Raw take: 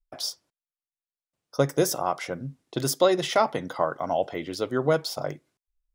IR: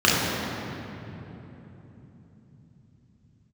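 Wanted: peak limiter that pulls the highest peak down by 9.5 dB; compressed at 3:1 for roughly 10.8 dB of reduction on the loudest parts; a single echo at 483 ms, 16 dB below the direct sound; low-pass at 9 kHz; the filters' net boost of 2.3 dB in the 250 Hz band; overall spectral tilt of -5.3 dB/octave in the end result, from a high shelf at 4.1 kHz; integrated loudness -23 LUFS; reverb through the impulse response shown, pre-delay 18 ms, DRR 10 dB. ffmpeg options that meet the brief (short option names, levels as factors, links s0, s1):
-filter_complex "[0:a]lowpass=9000,equalizer=f=250:t=o:g=3.5,highshelf=f=4100:g=-9,acompressor=threshold=0.0316:ratio=3,alimiter=level_in=1.06:limit=0.0631:level=0:latency=1,volume=0.944,aecho=1:1:483:0.158,asplit=2[s0][s1];[1:a]atrim=start_sample=2205,adelay=18[s2];[s1][s2]afir=irnorm=-1:irlink=0,volume=0.0251[s3];[s0][s3]amix=inputs=2:normalize=0,volume=4.73"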